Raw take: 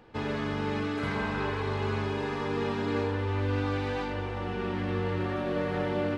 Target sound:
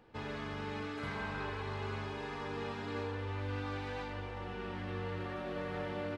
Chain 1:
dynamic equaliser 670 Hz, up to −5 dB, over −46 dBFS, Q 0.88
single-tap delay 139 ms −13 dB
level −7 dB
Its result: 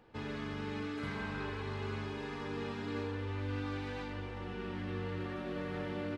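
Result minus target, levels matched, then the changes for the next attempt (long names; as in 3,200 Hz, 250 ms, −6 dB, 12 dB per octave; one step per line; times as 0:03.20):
250 Hz band +3.0 dB
change: dynamic equaliser 290 Hz, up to −5 dB, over −46 dBFS, Q 0.88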